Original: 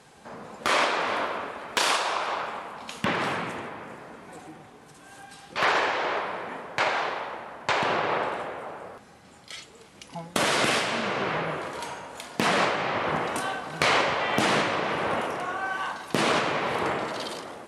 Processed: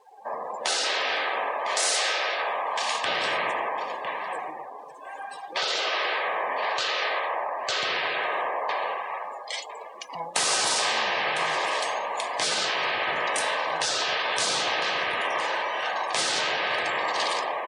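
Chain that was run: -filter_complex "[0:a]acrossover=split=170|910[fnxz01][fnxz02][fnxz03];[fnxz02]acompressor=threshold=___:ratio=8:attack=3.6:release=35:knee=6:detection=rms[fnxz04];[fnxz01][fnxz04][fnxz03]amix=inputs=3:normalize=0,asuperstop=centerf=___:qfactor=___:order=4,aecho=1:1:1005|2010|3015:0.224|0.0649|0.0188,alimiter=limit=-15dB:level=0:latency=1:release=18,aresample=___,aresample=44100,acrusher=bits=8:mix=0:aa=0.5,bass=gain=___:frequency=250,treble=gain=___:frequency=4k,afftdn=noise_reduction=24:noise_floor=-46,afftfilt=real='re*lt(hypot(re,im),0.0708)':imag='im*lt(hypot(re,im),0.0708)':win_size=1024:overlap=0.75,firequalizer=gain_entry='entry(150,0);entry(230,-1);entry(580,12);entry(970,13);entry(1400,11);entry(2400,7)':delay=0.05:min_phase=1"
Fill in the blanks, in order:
-38dB, 1400, 4.1, 22050, -11, 2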